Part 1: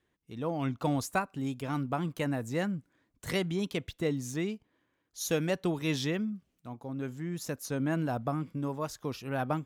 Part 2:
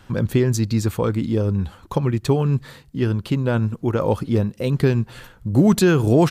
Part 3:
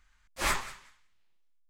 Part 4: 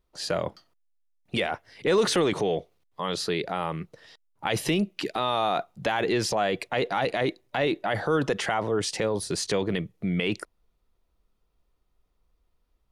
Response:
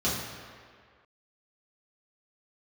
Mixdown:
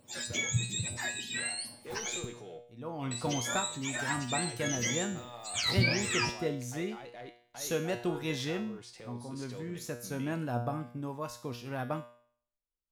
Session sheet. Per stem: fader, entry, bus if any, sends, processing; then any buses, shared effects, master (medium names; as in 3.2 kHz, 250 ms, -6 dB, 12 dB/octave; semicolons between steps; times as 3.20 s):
-4.5 dB, 2.40 s, no send, level rider gain up to 12 dB
-0.5 dB, 0.00 s, muted 2.25–3.11 s, no send, spectrum inverted on a logarithmic axis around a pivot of 920 Hz
-16.0 dB, 1.45 s, no send, none
-14.0 dB, 0.00 s, no send, waveshaping leveller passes 1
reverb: none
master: feedback comb 120 Hz, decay 0.56 s, harmonics all, mix 80%